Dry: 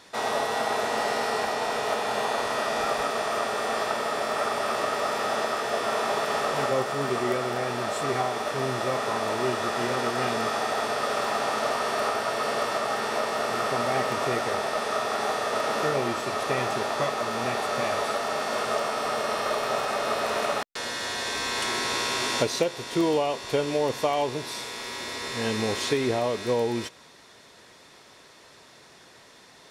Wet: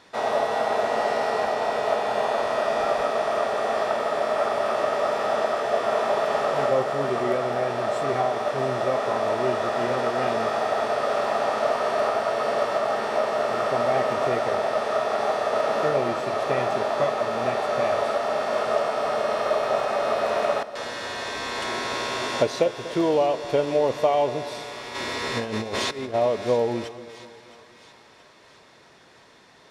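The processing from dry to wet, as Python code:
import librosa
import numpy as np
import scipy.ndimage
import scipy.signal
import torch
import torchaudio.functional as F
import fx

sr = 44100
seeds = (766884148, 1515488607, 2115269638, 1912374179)

y = fx.dynamic_eq(x, sr, hz=620.0, q=2.4, threshold_db=-41.0, ratio=4.0, max_db=7)
y = fx.over_compress(y, sr, threshold_db=-29.0, ratio=-0.5, at=(24.94, 26.13), fade=0.02)
y = fx.lowpass(y, sr, hz=3300.0, slope=6)
y = fx.echo_split(y, sr, split_hz=1000.0, low_ms=242, high_ms=672, feedback_pct=52, wet_db=-15)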